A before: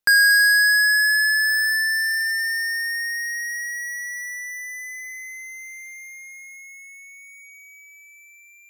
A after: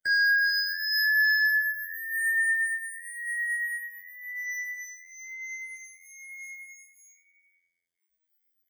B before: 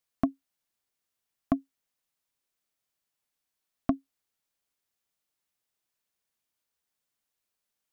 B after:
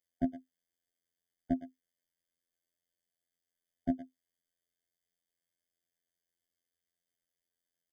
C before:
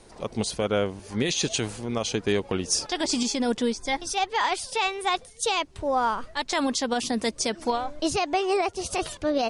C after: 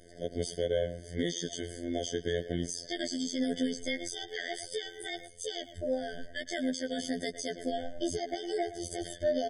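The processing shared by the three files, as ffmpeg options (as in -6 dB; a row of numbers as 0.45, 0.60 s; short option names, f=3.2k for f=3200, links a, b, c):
-filter_complex "[0:a]asplit=2[a][b];[b]adelay=110,highpass=300,lowpass=3.4k,asoftclip=type=hard:threshold=-21dB,volume=-12dB[c];[a][c]amix=inputs=2:normalize=0,afftfilt=real='hypot(re,im)*cos(PI*b)':imag='0':win_size=2048:overlap=0.75,alimiter=limit=-15dB:level=0:latency=1:release=260,afftfilt=real='re*eq(mod(floor(b*sr/1024/740),2),0)':imag='im*eq(mod(floor(b*sr/1024/740),2),0)':win_size=1024:overlap=0.75"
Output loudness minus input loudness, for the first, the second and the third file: -7.0, -4.0, -8.5 LU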